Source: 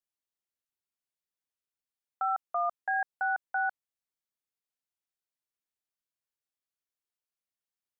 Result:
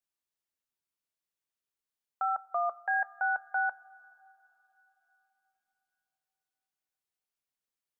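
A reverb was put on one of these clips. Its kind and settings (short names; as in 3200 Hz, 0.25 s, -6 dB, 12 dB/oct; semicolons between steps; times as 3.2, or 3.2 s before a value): two-slope reverb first 0.2 s, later 3.7 s, from -19 dB, DRR 14.5 dB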